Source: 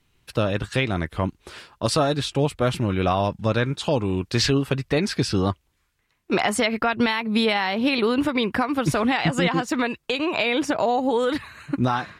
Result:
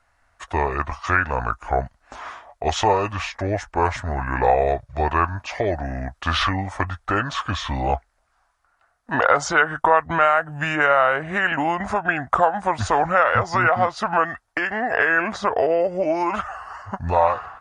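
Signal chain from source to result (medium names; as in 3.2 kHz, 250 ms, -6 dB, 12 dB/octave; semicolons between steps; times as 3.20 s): graphic EQ 250/500/1000/2000/4000 Hz -11/-5/+9/+9/-5 dB; wide varispeed 0.693×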